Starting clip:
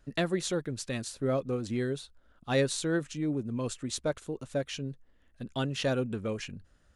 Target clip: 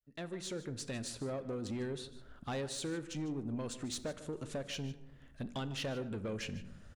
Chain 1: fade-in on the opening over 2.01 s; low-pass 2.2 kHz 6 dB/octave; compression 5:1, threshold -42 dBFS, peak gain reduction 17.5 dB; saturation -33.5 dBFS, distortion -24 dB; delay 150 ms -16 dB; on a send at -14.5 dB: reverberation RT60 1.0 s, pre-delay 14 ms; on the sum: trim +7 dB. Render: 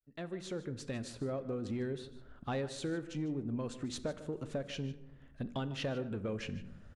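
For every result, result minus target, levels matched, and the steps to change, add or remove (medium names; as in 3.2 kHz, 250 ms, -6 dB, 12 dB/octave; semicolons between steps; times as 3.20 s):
8 kHz band -7.0 dB; saturation: distortion -9 dB
change: low-pass 8.7 kHz 6 dB/octave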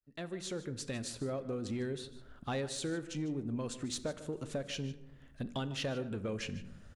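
saturation: distortion -9 dB
change: saturation -40 dBFS, distortion -15 dB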